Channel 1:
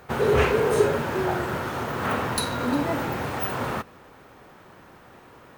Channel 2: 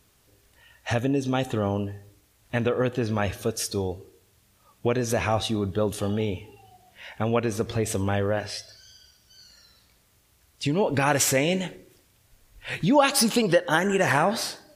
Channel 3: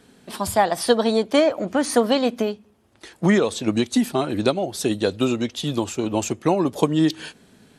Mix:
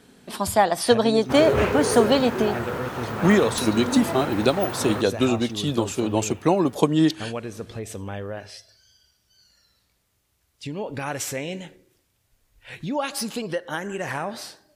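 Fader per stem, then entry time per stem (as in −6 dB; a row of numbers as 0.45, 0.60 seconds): −2.5, −7.5, 0.0 decibels; 1.20, 0.00, 0.00 seconds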